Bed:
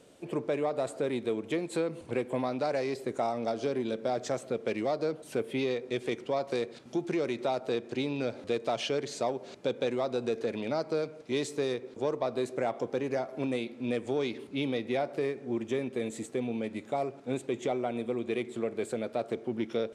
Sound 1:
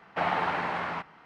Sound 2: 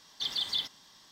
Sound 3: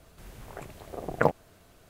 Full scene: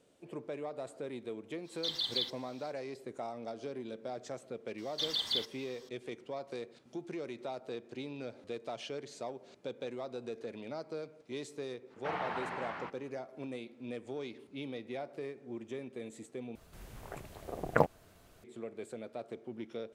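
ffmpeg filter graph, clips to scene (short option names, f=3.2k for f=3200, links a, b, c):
-filter_complex "[2:a]asplit=2[a][b];[0:a]volume=-10.5dB[c];[a]equalizer=f=4k:t=o:w=0.21:g=9[d];[c]asplit=2[e][f];[e]atrim=end=16.554[g];[3:a]atrim=end=1.89,asetpts=PTS-STARTPTS,volume=-3.5dB[h];[f]atrim=start=18.436[i];[d]atrim=end=1.11,asetpts=PTS-STARTPTS,volume=-6dB,afade=t=in:d=0.05,afade=t=out:st=1.06:d=0.05,adelay=1630[j];[b]atrim=end=1.11,asetpts=PTS-STARTPTS,volume=-2dB,afade=t=in:d=0.004:c=hsin,afade=t=out:st=1.106:d=0.004:c=hsin,adelay=4780[k];[1:a]atrim=end=1.25,asetpts=PTS-STARTPTS,volume=-10dB,afade=t=in:d=0.05,afade=t=out:st=1.2:d=0.05,adelay=11880[l];[g][h]acrossfade=d=0.004:c1=hsin:c2=hsin[m];[m][i]acrossfade=d=0.004:c1=hsin:c2=hsin[n];[n][j][k][l]amix=inputs=4:normalize=0"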